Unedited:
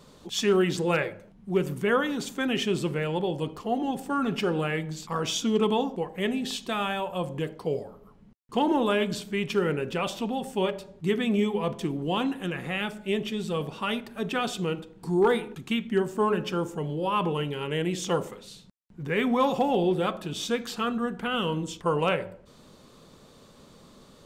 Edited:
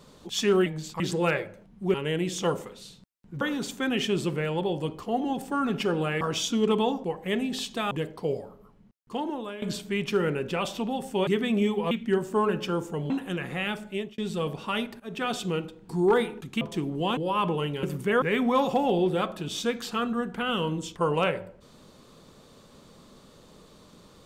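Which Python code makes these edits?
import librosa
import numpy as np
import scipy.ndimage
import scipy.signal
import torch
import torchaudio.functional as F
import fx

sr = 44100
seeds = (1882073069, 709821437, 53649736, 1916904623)

y = fx.edit(x, sr, fx.swap(start_s=1.6, length_s=0.39, other_s=17.6, other_length_s=1.47),
    fx.move(start_s=4.79, length_s=0.34, to_s=0.66),
    fx.cut(start_s=6.83, length_s=0.5),
    fx.fade_out_to(start_s=7.87, length_s=1.17, floor_db=-16.5),
    fx.cut(start_s=10.69, length_s=0.35),
    fx.swap(start_s=11.68, length_s=0.56, other_s=15.75, other_length_s=1.19),
    fx.fade_out_span(start_s=13.0, length_s=0.32),
    fx.fade_in_from(start_s=14.14, length_s=0.41, curve='qsin', floor_db=-17.0), tone=tone)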